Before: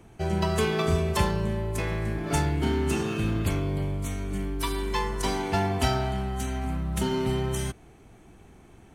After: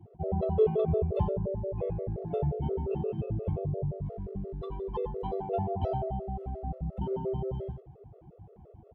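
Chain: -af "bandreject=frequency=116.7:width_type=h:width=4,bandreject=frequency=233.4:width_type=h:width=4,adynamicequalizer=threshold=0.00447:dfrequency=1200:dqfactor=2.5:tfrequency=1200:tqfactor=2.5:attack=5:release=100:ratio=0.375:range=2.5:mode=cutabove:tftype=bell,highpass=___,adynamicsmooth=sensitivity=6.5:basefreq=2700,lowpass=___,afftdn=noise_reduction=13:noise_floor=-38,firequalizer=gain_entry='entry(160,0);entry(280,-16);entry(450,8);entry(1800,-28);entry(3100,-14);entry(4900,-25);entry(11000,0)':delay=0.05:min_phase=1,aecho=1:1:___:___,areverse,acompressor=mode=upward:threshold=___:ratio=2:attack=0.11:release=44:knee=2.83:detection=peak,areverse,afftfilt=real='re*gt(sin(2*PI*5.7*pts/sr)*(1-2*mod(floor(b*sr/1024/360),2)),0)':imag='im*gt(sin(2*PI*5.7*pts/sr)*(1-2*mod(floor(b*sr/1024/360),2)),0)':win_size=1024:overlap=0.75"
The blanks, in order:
66, 3600, 88, 0.251, 0.0355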